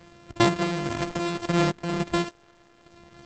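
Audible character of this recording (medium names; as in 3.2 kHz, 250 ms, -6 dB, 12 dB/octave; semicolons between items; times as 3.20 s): a buzz of ramps at a fixed pitch in blocks of 128 samples; random-step tremolo; Opus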